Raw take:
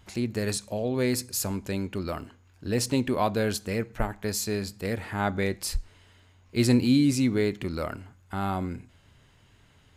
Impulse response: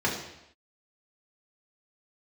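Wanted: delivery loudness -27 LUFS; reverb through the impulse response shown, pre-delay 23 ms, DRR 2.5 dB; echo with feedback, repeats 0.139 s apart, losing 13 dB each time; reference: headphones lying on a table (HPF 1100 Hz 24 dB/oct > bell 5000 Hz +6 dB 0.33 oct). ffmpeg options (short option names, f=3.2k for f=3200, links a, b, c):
-filter_complex "[0:a]aecho=1:1:139|278|417:0.224|0.0493|0.0108,asplit=2[a][b];[1:a]atrim=start_sample=2205,adelay=23[c];[b][c]afir=irnorm=-1:irlink=0,volume=-14.5dB[d];[a][d]amix=inputs=2:normalize=0,highpass=f=1.1k:w=0.5412,highpass=f=1.1k:w=1.3066,equalizer=f=5k:t=o:w=0.33:g=6,volume=6dB"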